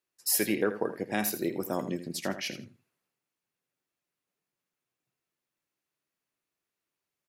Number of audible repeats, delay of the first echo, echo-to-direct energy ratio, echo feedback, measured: 2, 81 ms, -12.0 dB, 19%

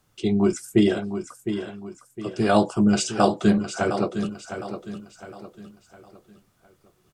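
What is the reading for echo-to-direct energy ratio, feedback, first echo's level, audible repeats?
-9.0 dB, 39%, -9.5 dB, 4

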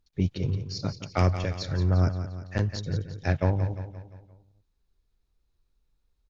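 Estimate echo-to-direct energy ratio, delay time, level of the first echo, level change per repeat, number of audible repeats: -9.0 dB, 174 ms, -10.5 dB, -6.0 dB, 5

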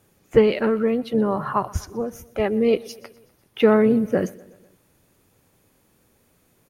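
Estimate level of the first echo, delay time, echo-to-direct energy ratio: -22.0 dB, 124 ms, -20.5 dB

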